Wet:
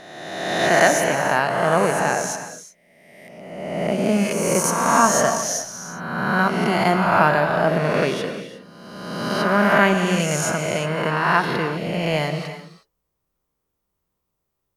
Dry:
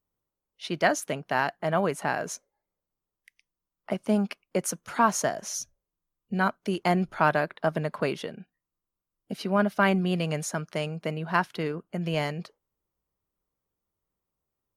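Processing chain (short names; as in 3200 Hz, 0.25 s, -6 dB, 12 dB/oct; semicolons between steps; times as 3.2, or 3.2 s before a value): spectral swells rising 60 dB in 1.55 s; non-linear reverb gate 0.39 s flat, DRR 7 dB; gain +3.5 dB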